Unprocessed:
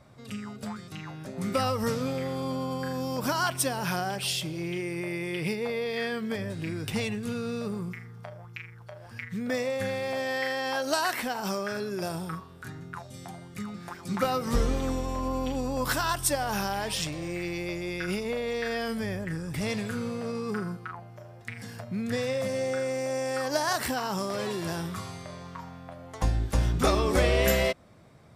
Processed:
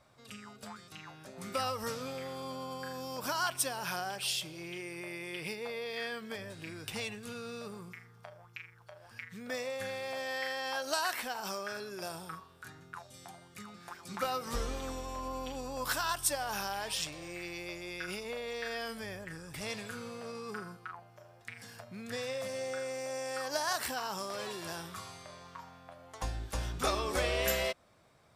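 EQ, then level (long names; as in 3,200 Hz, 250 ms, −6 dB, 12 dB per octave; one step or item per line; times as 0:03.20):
low-shelf EQ 81 Hz −6 dB
parametric band 180 Hz −10 dB 2.9 octaves
parametric band 2,000 Hz −3.5 dB 0.23 octaves
−3.5 dB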